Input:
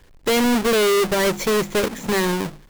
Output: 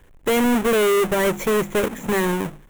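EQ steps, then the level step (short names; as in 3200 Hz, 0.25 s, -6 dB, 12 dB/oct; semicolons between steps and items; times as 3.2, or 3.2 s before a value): bell 4700 Hz -14 dB 0.65 oct; 0.0 dB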